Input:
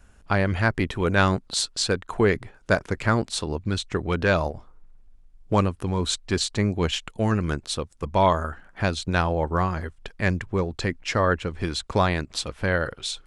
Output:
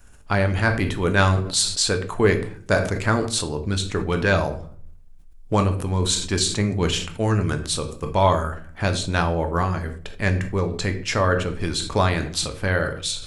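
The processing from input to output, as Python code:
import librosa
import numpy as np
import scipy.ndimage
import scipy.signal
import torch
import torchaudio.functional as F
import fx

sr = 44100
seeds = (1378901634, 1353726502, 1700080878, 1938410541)

y = fx.high_shelf(x, sr, hz=7200.0, db=11.0)
y = fx.room_shoebox(y, sr, seeds[0], volume_m3=62.0, walls='mixed', distance_m=0.32)
y = fx.sustainer(y, sr, db_per_s=81.0)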